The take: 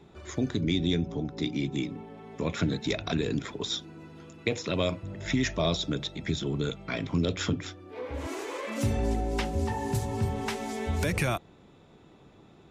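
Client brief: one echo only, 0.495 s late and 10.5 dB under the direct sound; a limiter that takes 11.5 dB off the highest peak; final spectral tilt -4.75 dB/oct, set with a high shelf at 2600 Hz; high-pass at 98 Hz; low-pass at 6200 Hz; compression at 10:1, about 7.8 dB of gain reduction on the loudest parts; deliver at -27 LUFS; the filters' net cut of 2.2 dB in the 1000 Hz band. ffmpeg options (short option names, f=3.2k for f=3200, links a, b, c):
-af "highpass=98,lowpass=6.2k,equalizer=f=1k:t=o:g=-4,highshelf=f=2.6k:g=6,acompressor=threshold=-30dB:ratio=10,alimiter=level_in=3.5dB:limit=-24dB:level=0:latency=1,volume=-3.5dB,aecho=1:1:495:0.299,volume=10.5dB"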